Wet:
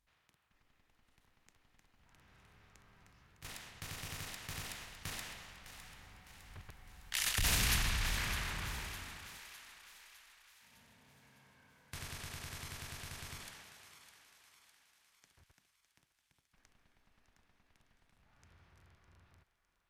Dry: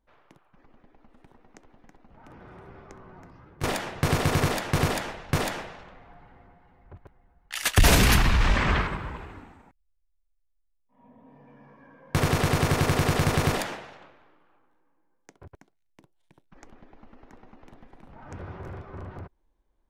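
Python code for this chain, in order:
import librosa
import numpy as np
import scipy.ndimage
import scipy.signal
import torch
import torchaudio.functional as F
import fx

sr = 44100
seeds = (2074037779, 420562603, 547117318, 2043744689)

p1 = fx.bin_compress(x, sr, power=0.6)
p2 = fx.doppler_pass(p1, sr, speed_mps=18, closest_m=8.8, pass_at_s=7.72)
p3 = fx.over_compress(p2, sr, threshold_db=-32.0, ratio=-1.0)
p4 = p2 + F.gain(torch.from_numpy(p3), -2.0).numpy()
p5 = fx.tone_stack(p4, sr, knobs='5-5-5')
p6 = fx.echo_thinned(p5, sr, ms=607, feedback_pct=52, hz=520.0, wet_db=-11.0)
y = F.gain(torch.from_numpy(p6), -4.0).numpy()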